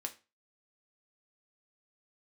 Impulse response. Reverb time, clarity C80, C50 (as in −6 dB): 0.30 s, 21.5 dB, 15.5 dB